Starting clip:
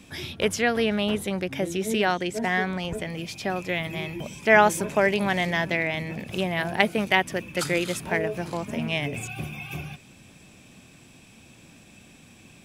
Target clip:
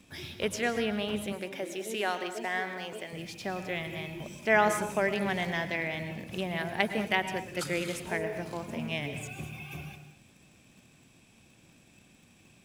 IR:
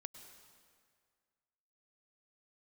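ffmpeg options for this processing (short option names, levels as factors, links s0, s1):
-filter_complex "[0:a]asettb=1/sr,asplit=3[s0][s1][s2];[s0]atrim=end=1.324[s3];[s1]atrim=start=1.32:end=3.13,asetpts=PTS-STARTPTS,afade=t=in:d=0.004:c=qsin,afade=t=out:st=1.806:d=0.004:c=qsin,highpass=330[s4];[s2]atrim=start=3.126[s5];[s3][s4]acrossfade=d=0.004:c1=hsin:c2=qsin[s6];[s6][s5]acrossfade=d=0.004:c1=qsin:c2=hsin,asplit=2[s7][s8];[s8]acrusher=bits=6:mix=0:aa=0.000001,volume=0.282[s9];[s7][s9]amix=inputs=2:normalize=0[s10];[1:a]atrim=start_sample=2205,afade=t=out:st=0.3:d=0.01,atrim=end_sample=13671[s11];[s10][s11]afir=irnorm=-1:irlink=0,volume=0.668"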